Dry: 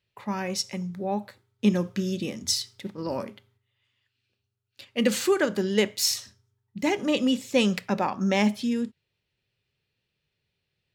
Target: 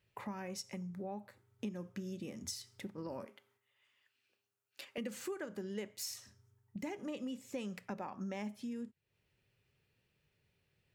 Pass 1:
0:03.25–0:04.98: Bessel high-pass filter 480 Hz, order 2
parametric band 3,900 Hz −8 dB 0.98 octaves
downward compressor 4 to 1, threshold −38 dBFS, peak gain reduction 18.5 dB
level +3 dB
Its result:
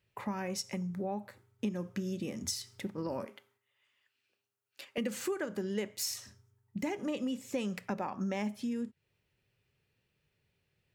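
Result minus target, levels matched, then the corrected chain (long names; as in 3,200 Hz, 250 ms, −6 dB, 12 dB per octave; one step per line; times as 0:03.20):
downward compressor: peak gain reduction −6.5 dB
0:03.25–0:04.98: Bessel high-pass filter 480 Hz, order 2
parametric band 3,900 Hz −8 dB 0.98 octaves
downward compressor 4 to 1, threshold −47 dBFS, peak gain reduction 25.5 dB
level +3 dB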